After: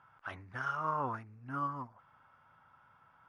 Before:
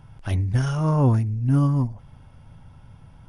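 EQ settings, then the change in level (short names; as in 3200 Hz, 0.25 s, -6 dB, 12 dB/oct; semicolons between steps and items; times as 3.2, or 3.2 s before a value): band-pass 1300 Hz, Q 3.5; +3.0 dB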